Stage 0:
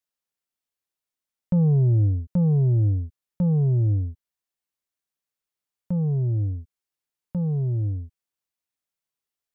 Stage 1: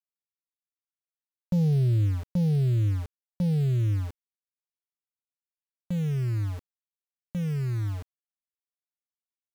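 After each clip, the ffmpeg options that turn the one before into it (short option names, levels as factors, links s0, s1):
-af "aeval=exprs='val(0)*gte(abs(val(0)),0.0251)':c=same,volume=0.631"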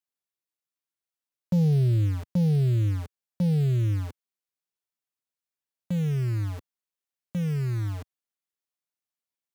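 -af "highpass=91,volume=1.26"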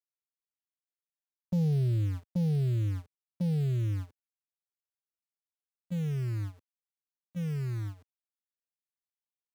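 -af "agate=range=0.178:threshold=0.0398:ratio=16:detection=peak,volume=0.531"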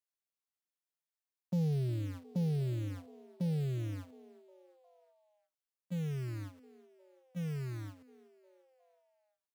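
-filter_complex "[0:a]highpass=150,asplit=5[s0][s1][s2][s3][s4];[s1]adelay=358,afreqshift=130,volume=0.0794[s5];[s2]adelay=716,afreqshift=260,volume=0.0452[s6];[s3]adelay=1074,afreqshift=390,volume=0.0257[s7];[s4]adelay=1432,afreqshift=520,volume=0.0148[s8];[s0][s5][s6][s7][s8]amix=inputs=5:normalize=0,volume=0.794"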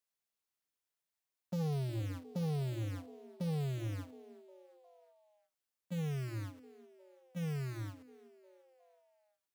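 -filter_complex "[0:a]bandreject=f=60:t=h:w=6,bandreject=f=120:t=h:w=6,bandreject=f=180:t=h:w=6,bandreject=f=240:t=h:w=6,bandreject=f=300:t=h:w=6,bandreject=f=360:t=h:w=6,acrossover=split=660[s0][s1];[s0]asoftclip=type=tanh:threshold=0.0168[s2];[s2][s1]amix=inputs=2:normalize=0,volume=1.33"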